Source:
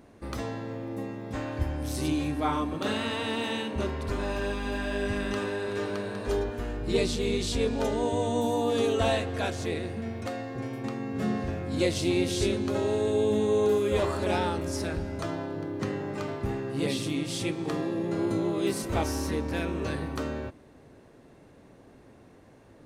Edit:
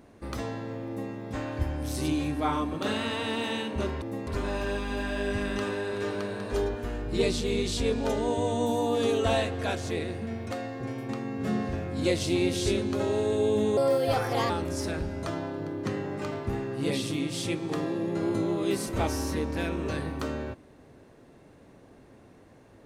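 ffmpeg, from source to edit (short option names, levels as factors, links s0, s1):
-filter_complex "[0:a]asplit=5[s0][s1][s2][s3][s4];[s0]atrim=end=4.022[s5];[s1]atrim=start=0.868:end=1.122[s6];[s2]atrim=start=4.018:end=13.524[s7];[s3]atrim=start=13.52:end=14.46,asetpts=PTS-STARTPTS,asetrate=56889,aresample=44100[s8];[s4]atrim=start=14.456[s9];[s5][s6]acrossfade=d=0.004:c1=hsin:c2=hsin[s10];[s10][s7]acrossfade=d=0.004:c1=hsin:c2=hsin[s11];[s11][s8]acrossfade=d=0.004:c1=hsin:c2=hsin[s12];[s12][s9]acrossfade=d=0.004:c1=hsin:c2=hsin"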